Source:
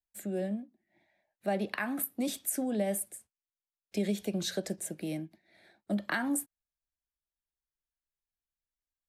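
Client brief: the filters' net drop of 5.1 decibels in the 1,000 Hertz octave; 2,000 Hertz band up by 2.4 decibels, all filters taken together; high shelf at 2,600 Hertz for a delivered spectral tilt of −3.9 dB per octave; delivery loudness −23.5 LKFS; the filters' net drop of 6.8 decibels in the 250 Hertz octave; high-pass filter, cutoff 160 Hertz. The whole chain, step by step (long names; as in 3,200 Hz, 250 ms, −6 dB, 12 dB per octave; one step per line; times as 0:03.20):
high-pass filter 160 Hz
parametric band 250 Hz −7 dB
parametric band 1,000 Hz −8 dB
parametric band 2,000 Hz +9 dB
high-shelf EQ 2,600 Hz −7 dB
level +14.5 dB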